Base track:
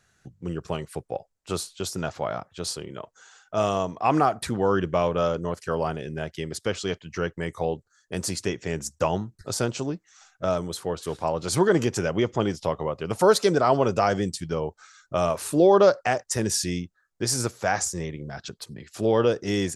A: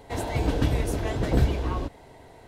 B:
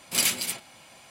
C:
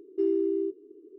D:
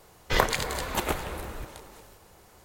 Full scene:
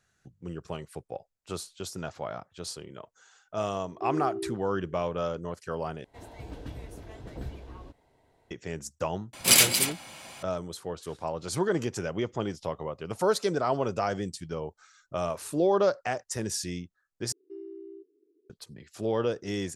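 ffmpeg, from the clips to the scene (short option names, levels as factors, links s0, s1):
-filter_complex "[3:a]asplit=2[s0][s1];[0:a]volume=0.447[s2];[s0]alimiter=limit=0.0631:level=0:latency=1:release=71[s3];[2:a]acontrast=51[s4];[s2]asplit=3[s5][s6][s7];[s5]atrim=end=6.044[s8];[1:a]atrim=end=2.47,asetpts=PTS-STARTPTS,volume=0.141[s9];[s6]atrim=start=8.506:end=17.324[s10];[s1]atrim=end=1.18,asetpts=PTS-STARTPTS,volume=0.141[s11];[s7]atrim=start=18.496[s12];[s3]atrim=end=1.18,asetpts=PTS-STARTPTS,volume=0.596,afade=t=in:d=0.004:c=hsin,afade=t=out:st=1.176:d=0.004:c=hsin,adelay=3840[s13];[s4]atrim=end=1.1,asetpts=PTS-STARTPTS,volume=0.944,afade=t=in:d=0.004:c=hsin,afade=t=out:st=1.096:d=0.004:c=hsin,adelay=9330[s14];[s8][s9]acrossfade=d=0.004:c1=hsin:c2=hsin[s15];[s15][s10]acrossfade=d=0.004:c1=hsin:c2=hsin[s16];[s16][s11]acrossfade=d=0.004:c1=hsin:c2=hsin[s17];[s17][s12]acrossfade=d=0.004:c1=hsin:c2=hsin[s18];[s18][s13][s14]amix=inputs=3:normalize=0"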